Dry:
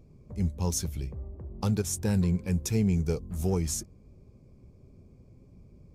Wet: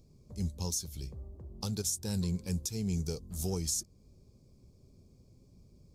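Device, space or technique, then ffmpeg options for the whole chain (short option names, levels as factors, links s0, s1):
over-bright horn tweeter: -af "highshelf=f=3100:t=q:w=1.5:g=10.5,alimiter=limit=0.158:level=0:latency=1:release=282,volume=0.501"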